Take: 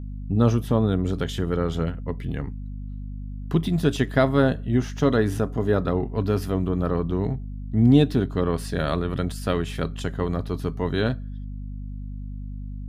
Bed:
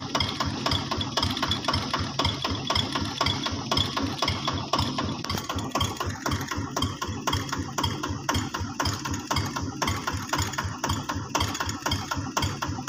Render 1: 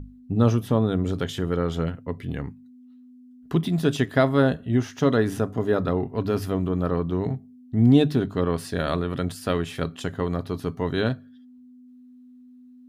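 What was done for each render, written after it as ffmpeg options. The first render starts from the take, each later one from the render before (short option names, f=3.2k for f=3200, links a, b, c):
-af "bandreject=f=50:t=h:w=6,bandreject=f=100:t=h:w=6,bandreject=f=150:t=h:w=6,bandreject=f=200:t=h:w=6"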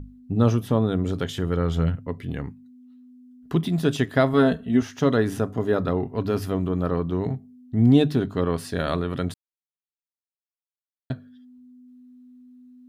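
-filter_complex "[0:a]asettb=1/sr,asplit=3[a][b][c];[a]atrim=end=1.304[d];[b]atrim=start=1.3:end=2.07,asetpts=PTS-STARTPTS,afade=t=in:d=0.004:c=qsin,afade=t=out:st=0.766:d=0.004:c=qsin,asubboost=boost=11:cutoff=180[e];[c]atrim=start=2.066[f];[d][e]acrossfade=d=0.004:c1=hsin:c2=qsin[g];[g][f]acrossfade=d=0.004:c1=qsin:c2=hsin,asettb=1/sr,asplit=3[h][i][j];[h]atrim=end=4.334[k];[i]atrim=start=4.33:end=4.82,asetpts=PTS-STARTPTS,afade=t=in:d=0.004:c=qsin,afade=t=out:st=0.486:d=0.004:c=qsin,aecho=1:1:4.5:0.65,atrim=end_sample=21609[l];[j]atrim=start=4.816[m];[k][l]acrossfade=d=0.004:c1=hsin:c2=qsin[n];[n][m]acrossfade=d=0.004:c1=qsin:c2=hsin,asplit=3[o][p][q];[o]atrim=end=9.34,asetpts=PTS-STARTPTS,afade=t=out:st=9.336:d=0.004:c=hsin[r];[p]atrim=start=9.34:end=11.1,asetpts=PTS-STARTPTS,volume=0[s];[q]atrim=start=11.1,asetpts=PTS-STARTPTS,afade=t=in:d=0.004:c=hsin[t];[r][s][t]concat=n=3:v=0:a=1"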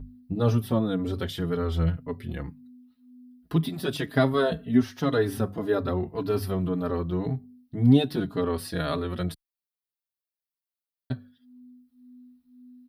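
-filter_complex "[0:a]aexciter=amount=1.2:drive=3.9:freq=3.8k,asplit=2[a][b];[b]adelay=4.6,afreqshift=-1.9[c];[a][c]amix=inputs=2:normalize=1"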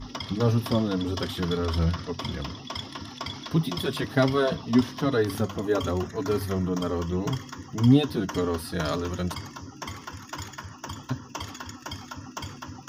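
-filter_complex "[1:a]volume=-10dB[a];[0:a][a]amix=inputs=2:normalize=0"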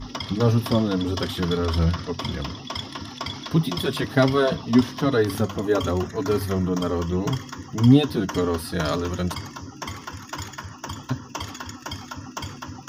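-af "volume=3.5dB"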